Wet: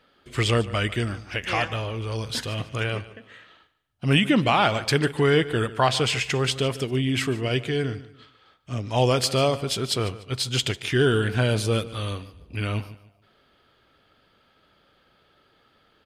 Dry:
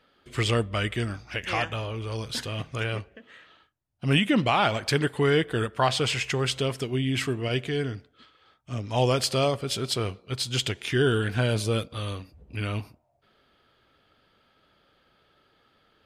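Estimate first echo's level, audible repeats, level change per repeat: −17.0 dB, 2, −10.5 dB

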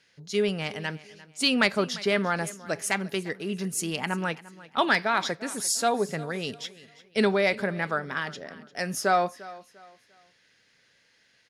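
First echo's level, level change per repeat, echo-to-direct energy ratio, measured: −19.0 dB, −10.0 dB, −18.5 dB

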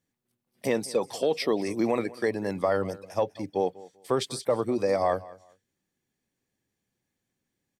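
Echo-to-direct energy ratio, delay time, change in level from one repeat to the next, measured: −20.0 dB, 195 ms, −13.5 dB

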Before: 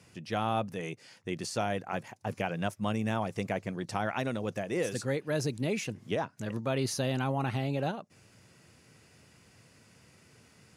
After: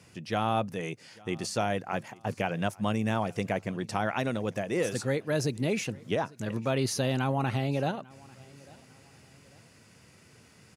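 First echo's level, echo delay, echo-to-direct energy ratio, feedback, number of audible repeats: −24.0 dB, 846 ms, −23.5 dB, 39%, 2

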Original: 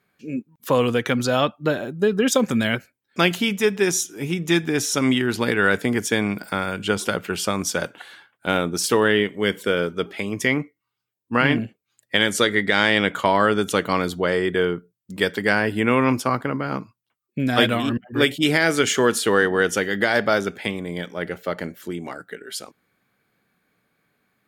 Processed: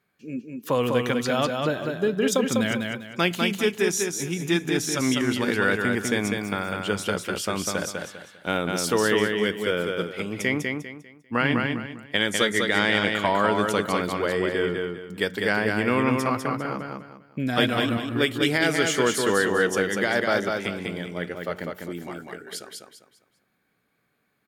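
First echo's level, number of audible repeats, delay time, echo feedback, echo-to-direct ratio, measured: −4.0 dB, 3, 199 ms, 30%, −3.5 dB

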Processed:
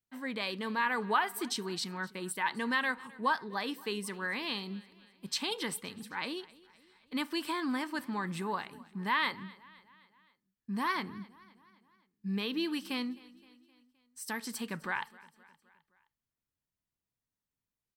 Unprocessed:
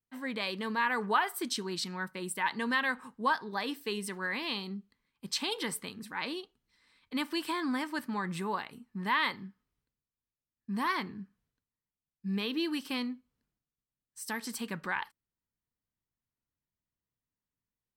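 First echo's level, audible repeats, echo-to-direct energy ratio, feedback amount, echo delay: −22.0 dB, 3, −20.5 dB, 55%, 260 ms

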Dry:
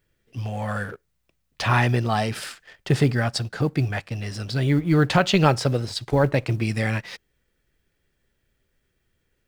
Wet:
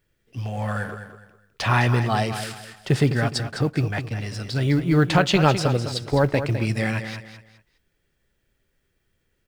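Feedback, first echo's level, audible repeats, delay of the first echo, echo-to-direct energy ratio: 29%, −10.0 dB, 3, 207 ms, −9.5 dB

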